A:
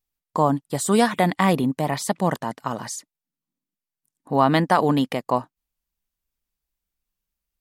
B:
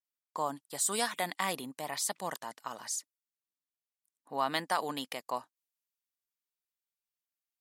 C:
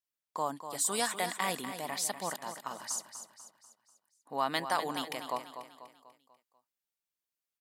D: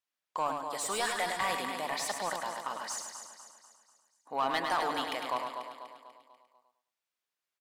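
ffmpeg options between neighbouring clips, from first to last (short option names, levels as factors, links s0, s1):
-af "highpass=f=1100:p=1,adynamicequalizer=threshold=0.00891:dfrequency=3700:dqfactor=0.7:tfrequency=3700:tqfactor=0.7:attack=5:release=100:ratio=0.375:range=3.5:mode=boostabove:tftype=highshelf,volume=0.376"
-af "aecho=1:1:245|490|735|980|1225:0.316|0.145|0.0669|0.0308|0.0142"
-filter_complex "[0:a]asplit=2[s0][s1];[s1]highpass=f=720:p=1,volume=7.08,asoftclip=type=tanh:threshold=0.2[s2];[s0][s2]amix=inputs=2:normalize=0,lowpass=f=2800:p=1,volume=0.501,aecho=1:1:104|208|312|416:0.531|0.159|0.0478|0.0143,volume=0.562"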